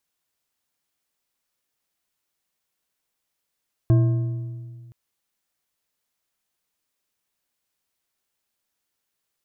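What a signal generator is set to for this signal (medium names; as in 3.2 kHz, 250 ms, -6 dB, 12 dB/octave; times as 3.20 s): metal hit bar, length 1.02 s, lowest mode 120 Hz, modes 5, decay 1.97 s, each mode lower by 9.5 dB, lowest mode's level -12 dB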